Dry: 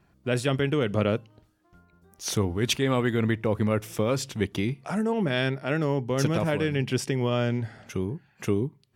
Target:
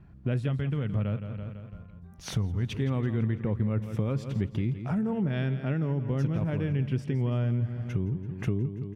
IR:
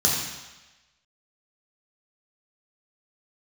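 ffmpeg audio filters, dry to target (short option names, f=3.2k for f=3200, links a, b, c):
-filter_complex "[0:a]bass=f=250:g=14,treble=f=4k:g=-13,aecho=1:1:167|334|501|668|835:0.224|0.11|0.0538|0.0263|0.0129,acompressor=threshold=-29dB:ratio=3,asettb=1/sr,asplit=3[a][b][c];[a]atrim=end=0.484[d];[b]atrim=start=0.48:end=2.71,asetpts=PTS-STARTPTS,afade=t=in:d=0.004:c=qsin,afade=t=out:st=2.226:d=0.004:c=qsin,equalizer=f=350:t=o:w=0.85:g=-7[e];[c]atrim=start=2.706[f];[d][e]acrossfade=d=0.004:c1=hsin:c2=qsin[g];[g][f]acrossfade=d=0.004:c1=qsin:c2=hsin"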